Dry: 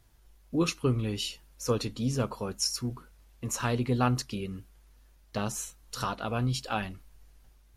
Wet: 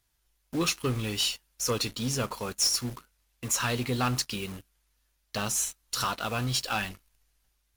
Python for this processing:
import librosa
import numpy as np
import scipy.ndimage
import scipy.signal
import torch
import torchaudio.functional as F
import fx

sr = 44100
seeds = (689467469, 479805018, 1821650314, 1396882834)

p1 = fx.tilt_shelf(x, sr, db=-6.0, hz=1100.0)
p2 = fx.leveller(p1, sr, passes=3)
p3 = (np.mod(10.0 ** (28.0 / 20.0) * p2 + 1.0, 2.0) - 1.0) / 10.0 ** (28.0 / 20.0)
p4 = p2 + (p3 * 10.0 ** (-6.5 / 20.0))
y = p4 * 10.0 ** (-7.5 / 20.0)